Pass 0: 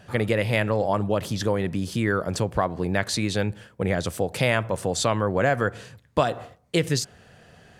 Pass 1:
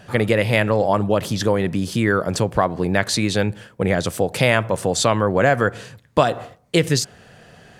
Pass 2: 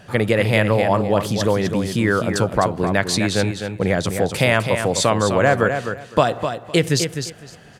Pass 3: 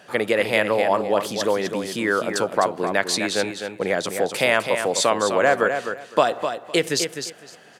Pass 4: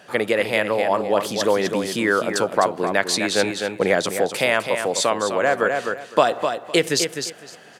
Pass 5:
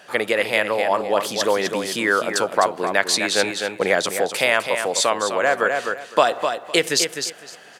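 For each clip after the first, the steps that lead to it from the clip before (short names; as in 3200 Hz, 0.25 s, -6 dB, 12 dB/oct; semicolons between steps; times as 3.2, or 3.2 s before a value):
bell 70 Hz -6 dB 0.71 oct; gain +5.5 dB
feedback echo 0.255 s, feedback 19%, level -7.5 dB
HPF 320 Hz 12 dB/oct; gain -1 dB
vocal rider 0.5 s; gain +1 dB
low shelf 390 Hz -9 dB; gain +2.5 dB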